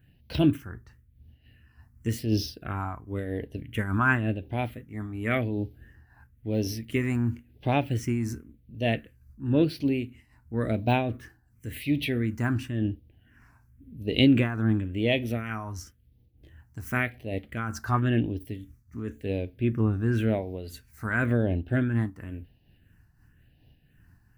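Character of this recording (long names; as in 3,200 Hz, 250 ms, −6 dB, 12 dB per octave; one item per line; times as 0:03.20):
phaser sweep stages 4, 0.94 Hz, lowest notch 530–1,300 Hz
amplitude modulation by smooth noise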